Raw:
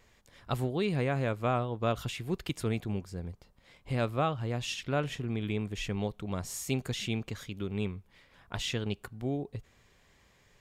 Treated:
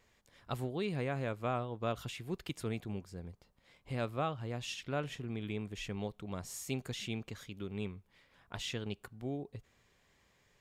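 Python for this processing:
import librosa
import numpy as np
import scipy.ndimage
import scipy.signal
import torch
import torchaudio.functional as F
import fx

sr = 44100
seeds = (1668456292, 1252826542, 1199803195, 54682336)

y = fx.low_shelf(x, sr, hz=81.0, db=-5.0)
y = y * librosa.db_to_amplitude(-5.5)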